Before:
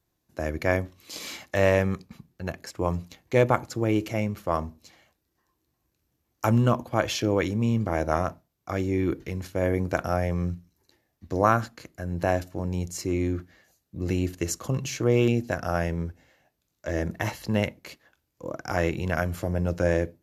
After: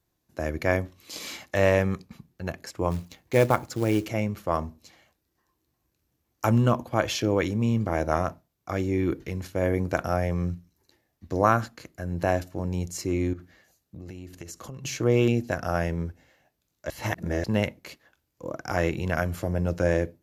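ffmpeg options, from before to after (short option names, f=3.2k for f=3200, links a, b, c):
-filter_complex "[0:a]asplit=3[a][b][c];[a]afade=t=out:st=2.9:d=0.02[d];[b]acrusher=bits=5:mode=log:mix=0:aa=0.000001,afade=t=in:st=2.9:d=0.02,afade=t=out:st=4.05:d=0.02[e];[c]afade=t=in:st=4.05:d=0.02[f];[d][e][f]amix=inputs=3:normalize=0,asettb=1/sr,asplit=3[g][h][i];[g]atrim=end=13.334[j];[h]atrim=start=13.33:end=14.85,asetpts=PTS-STARTPTS,afade=t=in:d=0.004:c=qsin,afade=t=out:st=1.516:d=0.004:c=qsin,acompressor=threshold=-37dB:ratio=6:attack=3.2:release=140:knee=1:detection=peak[k];[i]atrim=start=14.846[l];[j][k]acrossfade=d=0.004:c1=hsin:c2=qsin[m];[m][l]acrossfade=d=0.004:c1=qsin:c2=hsin,asplit=3[n][o][p];[n]atrim=end=16.902[q];[o]atrim=start=16.898:end=17.442,asetpts=PTS-STARTPTS,areverse[r];[p]atrim=start=17.438[s];[q][r]acrossfade=d=0.004:c1=hsin:c2=hsin[t];[t][s]acrossfade=d=0.004:c1=hsin:c2=hsin"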